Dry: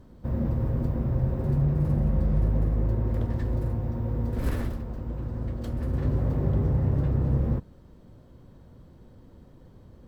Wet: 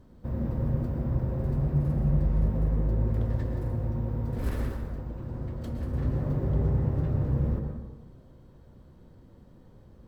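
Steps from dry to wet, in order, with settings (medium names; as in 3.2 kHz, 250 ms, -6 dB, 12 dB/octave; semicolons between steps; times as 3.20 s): plate-style reverb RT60 1.2 s, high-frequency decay 0.5×, pre-delay 100 ms, DRR 4.5 dB; trim -3.5 dB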